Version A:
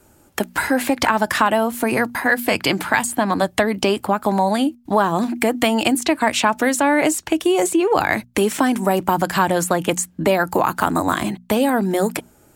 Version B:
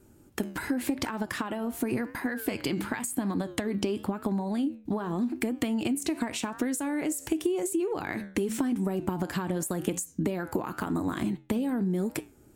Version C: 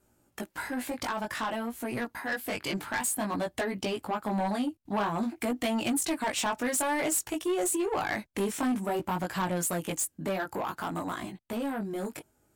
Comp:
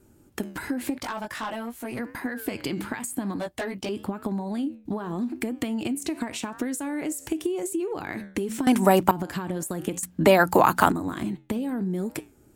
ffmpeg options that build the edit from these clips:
-filter_complex "[2:a]asplit=2[s0][s1];[0:a]asplit=2[s2][s3];[1:a]asplit=5[s4][s5][s6][s7][s8];[s4]atrim=end=0.982[s9];[s0]atrim=start=0.978:end=1.992[s10];[s5]atrim=start=1.988:end=3.362[s11];[s1]atrim=start=3.358:end=3.892[s12];[s6]atrim=start=3.888:end=8.672[s13];[s2]atrim=start=8.668:end=9.112[s14];[s7]atrim=start=9.108:end=10.032[s15];[s3]atrim=start=10.028:end=10.922[s16];[s8]atrim=start=10.918[s17];[s9][s10]acrossfade=d=0.004:c1=hsin:c2=hsin[s18];[s18][s11]acrossfade=d=0.004:c1=hsin:c2=hsin[s19];[s19][s12]acrossfade=d=0.004:c1=hsin:c2=hsin[s20];[s20][s13]acrossfade=d=0.004:c1=hsin:c2=hsin[s21];[s21][s14]acrossfade=d=0.004:c1=hsin:c2=hsin[s22];[s22][s15]acrossfade=d=0.004:c1=hsin:c2=hsin[s23];[s23][s16]acrossfade=d=0.004:c1=hsin:c2=hsin[s24];[s24][s17]acrossfade=d=0.004:c1=hsin:c2=hsin"

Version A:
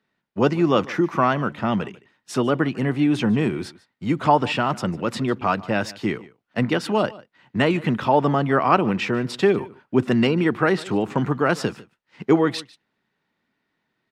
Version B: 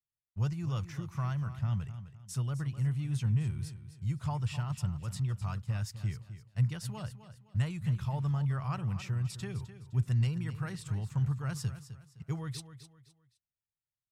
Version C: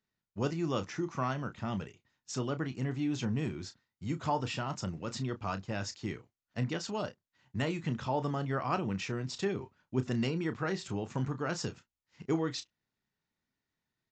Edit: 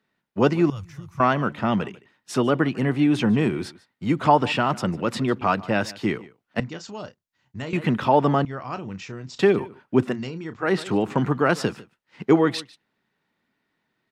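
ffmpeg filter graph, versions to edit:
-filter_complex "[2:a]asplit=3[s0][s1][s2];[0:a]asplit=5[s3][s4][s5][s6][s7];[s3]atrim=end=0.702[s8];[1:a]atrim=start=0.698:end=1.202[s9];[s4]atrim=start=1.198:end=6.602[s10];[s0]atrim=start=6.598:end=7.732[s11];[s5]atrim=start=7.728:end=8.452[s12];[s1]atrim=start=8.448:end=9.392[s13];[s6]atrim=start=9.388:end=10.2[s14];[s2]atrim=start=10.04:end=10.74[s15];[s7]atrim=start=10.58[s16];[s8][s9]acrossfade=d=0.004:c1=hsin:c2=hsin[s17];[s17][s10]acrossfade=d=0.004:c1=hsin:c2=hsin[s18];[s18][s11]acrossfade=d=0.004:c1=hsin:c2=hsin[s19];[s19][s12]acrossfade=d=0.004:c1=hsin:c2=hsin[s20];[s20][s13]acrossfade=d=0.004:c1=hsin:c2=hsin[s21];[s21][s14]acrossfade=d=0.004:c1=hsin:c2=hsin[s22];[s22][s15]acrossfade=d=0.16:c1=tri:c2=tri[s23];[s23][s16]acrossfade=d=0.16:c1=tri:c2=tri"

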